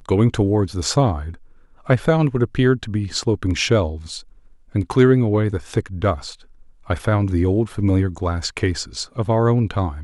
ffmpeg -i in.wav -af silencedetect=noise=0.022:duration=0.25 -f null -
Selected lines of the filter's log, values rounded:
silence_start: 1.34
silence_end: 1.87 | silence_duration: 0.52
silence_start: 4.21
silence_end: 4.75 | silence_duration: 0.54
silence_start: 6.34
silence_end: 6.89 | silence_duration: 0.55